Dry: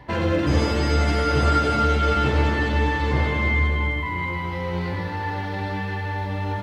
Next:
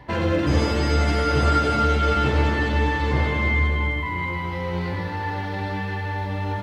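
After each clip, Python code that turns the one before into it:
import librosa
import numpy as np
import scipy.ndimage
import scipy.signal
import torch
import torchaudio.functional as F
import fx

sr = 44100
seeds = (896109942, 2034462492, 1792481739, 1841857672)

y = x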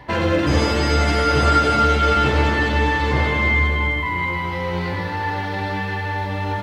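y = fx.low_shelf(x, sr, hz=430.0, db=-4.5)
y = y * 10.0 ** (5.5 / 20.0)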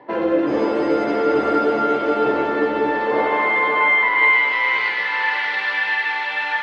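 y = fx.filter_sweep_bandpass(x, sr, from_hz=350.0, to_hz=2200.0, start_s=2.8, end_s=4.36, q=1.4)
y = fx.weighting(y, sr, curve='A')
y = fx.echo_diffused(y, sr, ms=513, feedback_pct=42, wet_db=-6.0)
y = y * 10.0 ** (8.5 / 20.0)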